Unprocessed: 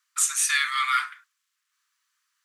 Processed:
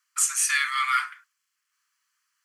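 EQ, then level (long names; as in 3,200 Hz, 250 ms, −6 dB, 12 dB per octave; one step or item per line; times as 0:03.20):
notch filter 3,700 Hz, Q 5.9
0.0 dB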